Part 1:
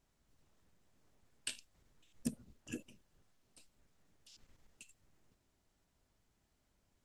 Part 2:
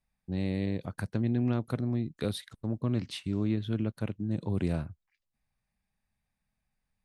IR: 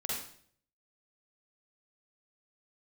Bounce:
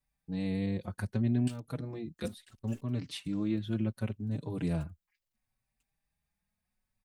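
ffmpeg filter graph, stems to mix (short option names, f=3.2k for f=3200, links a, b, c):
-filter_complex "[0:a]aeval=exprs='val(0)*gte(abs(val(0)),0.00299)':c=same,volume=-3.5dB,asplit=3[a][b][c];[b]volume=-17dB[d];[1:a]highshelf=f=9.9k:g=6.5,volume=0.5dB[e];[c]apad=whole_len=310667[f];[e][f]sidechaincompress=threshold=-49dB:ratio=12:attack=9.5:release=363[g];[d]aecho=0:1:994:1[h];[a][g][h]amix=inputs=3:normalize=0,asplit=2[i][j];[j]adelay=4.7,afreqshift=0.69[k];[i][k]amix=inputs=2:normalize=1"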